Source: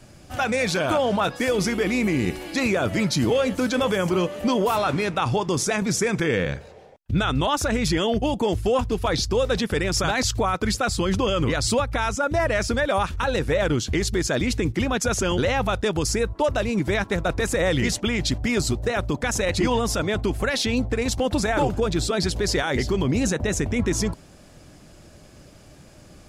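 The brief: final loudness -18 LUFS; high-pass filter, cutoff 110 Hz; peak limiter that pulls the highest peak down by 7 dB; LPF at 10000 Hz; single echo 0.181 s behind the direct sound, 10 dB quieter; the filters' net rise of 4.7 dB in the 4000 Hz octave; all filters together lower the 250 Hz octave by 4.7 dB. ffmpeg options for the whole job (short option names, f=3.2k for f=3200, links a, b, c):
-af "highpass=110,lowpass=10k,equalizer=f=250:t=o:g=-6,equalizer=f=4k:t=o:g=6,alimiter=limit=-15.5dB:level=0:latency=1,aecho=1:1:181:0.316,volume=7dB"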